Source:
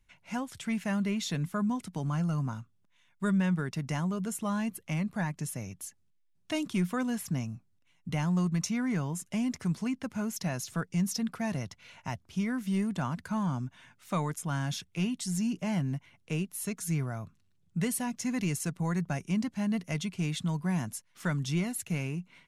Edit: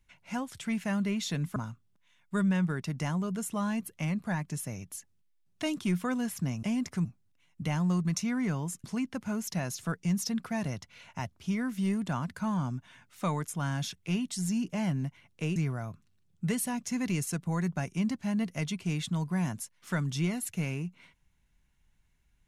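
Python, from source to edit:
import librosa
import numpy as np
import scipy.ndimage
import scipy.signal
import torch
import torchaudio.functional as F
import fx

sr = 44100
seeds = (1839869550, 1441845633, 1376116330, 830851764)

y = fx.edit(x, sr, fx.cut(start_s=1.56, length_s=0.89),
    fx.move(start_s=9.31, length_s=0.42, to_s=7.52),
    fx.cut(start_s=16.45, length_s=0.44), tone=tone)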